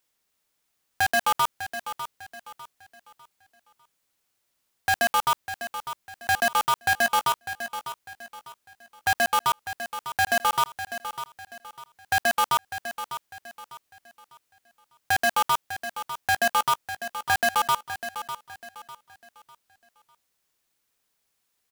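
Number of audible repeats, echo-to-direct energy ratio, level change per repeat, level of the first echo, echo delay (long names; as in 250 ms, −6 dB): 3, −10.5 dB, −9.5 dB, −11.0 dB, 600 ms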